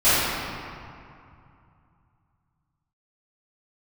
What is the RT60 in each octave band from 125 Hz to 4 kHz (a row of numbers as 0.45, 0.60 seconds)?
3.8, 2.9, 2.3, 2.7, 2.1, 1.5 seconds